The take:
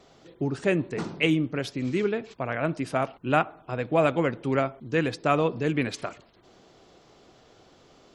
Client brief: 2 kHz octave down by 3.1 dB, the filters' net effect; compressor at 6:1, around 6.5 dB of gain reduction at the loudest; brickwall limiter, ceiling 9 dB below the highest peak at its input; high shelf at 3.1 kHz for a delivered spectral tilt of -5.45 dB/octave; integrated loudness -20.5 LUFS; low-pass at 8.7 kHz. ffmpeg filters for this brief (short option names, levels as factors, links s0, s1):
-af "lowpass=8700,equalizer=f=2000:t=o:g=-7,highshelf=f=3100:g=7,acompressor=threshold=0.0562:ratio=6,volume=4.47,alimiter=limit=0.355:level=0:latency=1"